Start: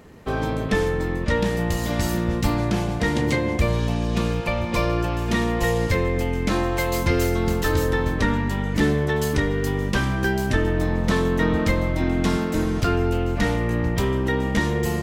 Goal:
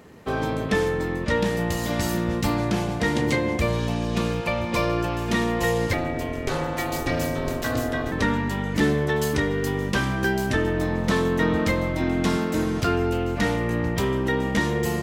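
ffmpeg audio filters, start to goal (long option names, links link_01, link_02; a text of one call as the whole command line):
ffmpeg -i in.wav -filter_complex "[0:a]highpass=frequency=110:poles=1,asettb=1/sr,asplit=3[link_01][link_02][link_03];[link_01]atrim=end=5.934[link_04];[link_02]atrim=start=5.93:end=8.12,asetpts=PTS-STARTPTS,afade=type=in:duration=0.004:curve=qsin,afade=type=out:start_time=2.186:duration=0.004:curve=qsin,aeval=exprs='val(0)*sin(2*PI*190*n/s)':channel_layout=same[link_05];[link_03]atrim=start=8.116[link_06];[link_04][link_05]acrossfade=duration=0.004:curve1=hsin:curve2=qsin[link_07];[link_07][link_06]acrossfade=duration=0.004:curve1=qsin:curve2=hsin" out.wav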